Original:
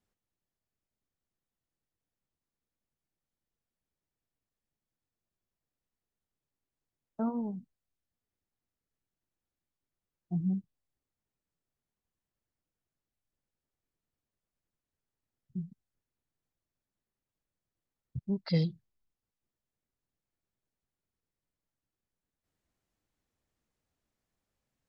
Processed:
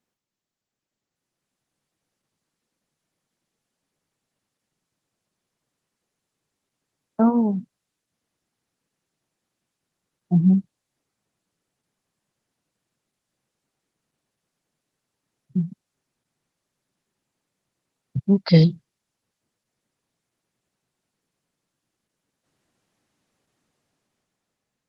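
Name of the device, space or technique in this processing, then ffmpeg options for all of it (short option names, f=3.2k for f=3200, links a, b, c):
video call: -af "highpass=f=120:w=0.5412,highpass=f=120:w=1.3066,dynaudnorm=f=270:g=9:m=10dB,volume=4.5dB" -ar 48000 -c:a libopus -b:a 16k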